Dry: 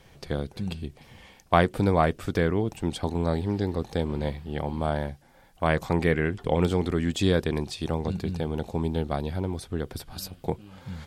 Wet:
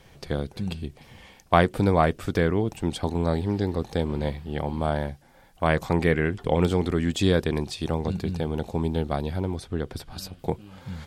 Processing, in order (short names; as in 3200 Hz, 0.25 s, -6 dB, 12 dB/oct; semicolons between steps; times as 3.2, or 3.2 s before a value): 9.55–10.39 high shelf 11000 Hz -11.5 dB; gain +1.5 dB